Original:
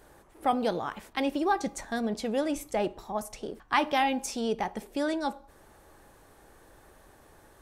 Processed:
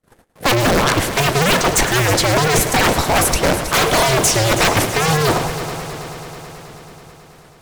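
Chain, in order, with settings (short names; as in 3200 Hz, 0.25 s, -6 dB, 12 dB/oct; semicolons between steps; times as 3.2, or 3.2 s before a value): cycle switcher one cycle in 2, inverted; gate -51 dBFS, range -50 dB; reverse; compressor 10:1, threshold -34 dBFS, peak gain reduction 15 dB; reverse; rotary speaker horn 7.5 Hz, later 1.1 Hz, at 0.84; sine folder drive 20 dB, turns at -20 dBFS; harmonic-percussive split percussive +4 dB; multi-head echo 0.108 s, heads first and third, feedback 74%, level -13 dB; record warp 78 rpm, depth 100 cents; gain +6.5 dB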